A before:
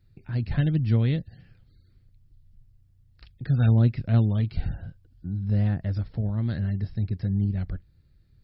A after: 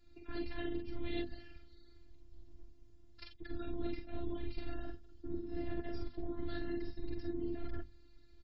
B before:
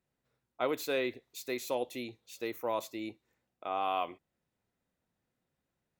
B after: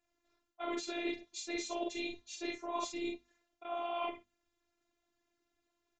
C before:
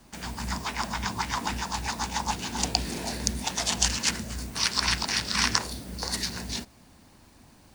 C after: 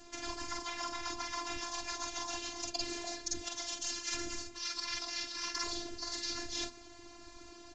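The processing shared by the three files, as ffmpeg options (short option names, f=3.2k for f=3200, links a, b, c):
-filter_complex "[0:a]asplit=2[a][b];[b]aecho=0:1:45|55:0.596|0.335[c];[a][c]amix=inputs=2:normalize=0,afftfilt=real='hypot(re,im)*cos(2*PI*random(0))':imag='hypot(re,im)*sin(2*PI*random(1))':win_size=512:overlap=0.75,aresample=16000,aresample=44100,acontrast=87,highshelf=f=4.2k:g=5.5,afftfilt=real='hypot(re,im)*cos(PI*b)':imag='0':win_size=512:overlap=0.75,bandreject=f=50:t=h:w=6,bandreject=f=100:t=h:w=6,bandreject=f=150:t=h:w=6,bandreject=f=200:t=h:w=6,bandreject=f=250:t=h:w=6,areverse,acompressor=threshold=-36dB:ratio=16,areverse,volume=3dB"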